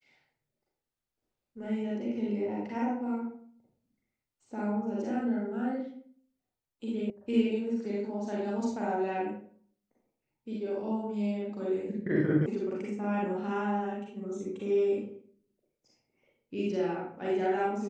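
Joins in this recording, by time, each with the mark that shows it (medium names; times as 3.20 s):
7.10 s: sound stops dead
12.46 s: sound stops dead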